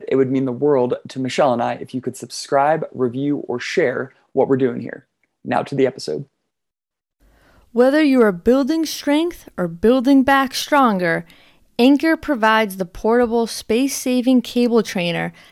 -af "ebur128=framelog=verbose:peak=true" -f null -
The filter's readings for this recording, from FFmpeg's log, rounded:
Integrated loudness:
  I:         -18.0 LUFS
  Threshold: -28.5 LUFS
Loudness range:
  LRA:         5.9 LU
  Threshold: -38.7 LUFS
  LRA low:   -22.2 LUFS
  LRA high:  -16.3 LUFS
True peak:
  Peak:       -3.3 dBFS